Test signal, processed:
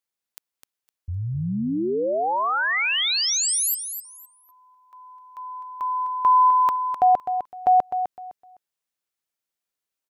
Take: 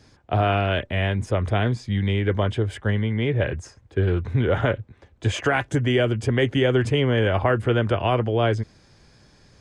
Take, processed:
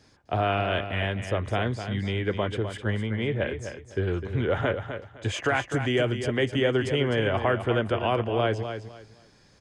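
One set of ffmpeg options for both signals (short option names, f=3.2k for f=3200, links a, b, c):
-filter_complex "[0:a]lowshelf=f=170:g=-6,asplit=2[a][b];[b]aecho=0:1:255|510|765:0.355|0.0816|0.0188[c];[a][c]amix=inputs=2:normalize=0,volume=-3dB"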